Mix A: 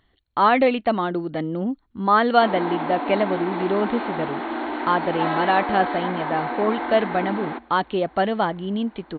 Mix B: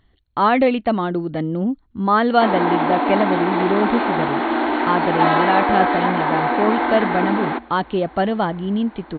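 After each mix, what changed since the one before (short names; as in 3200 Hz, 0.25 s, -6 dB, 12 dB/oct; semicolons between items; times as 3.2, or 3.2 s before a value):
speech: add low shelf 240 Hz +8.5 dB; background +8.0 dB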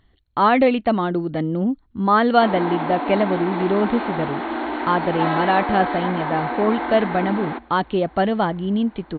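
background -6.0 dB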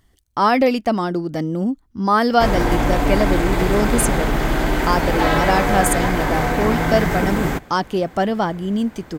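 background: remove rippled Chebyshev high-pass 230 Hz, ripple 9 dB; master: remove brick-wall FIR low-pass 4400 Hz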